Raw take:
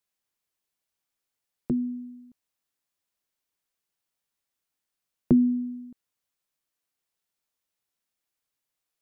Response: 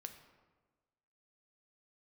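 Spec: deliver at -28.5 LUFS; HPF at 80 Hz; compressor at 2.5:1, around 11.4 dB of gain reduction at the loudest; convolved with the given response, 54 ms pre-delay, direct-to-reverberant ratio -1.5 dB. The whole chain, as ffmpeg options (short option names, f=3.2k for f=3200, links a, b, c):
-filter_complex "[0:a]highpass=80,acompressor=threshold=-33dB:ratio=2.5,asplit=2[a][b];[1:a]atrim=start_sample=2205,adelay=54[c];[b][c]afir=irnorm=-1:irlink=0,volume=6.5dB[d];[a][d]amix=inputs=2:normalize=0,volume=5.5dB"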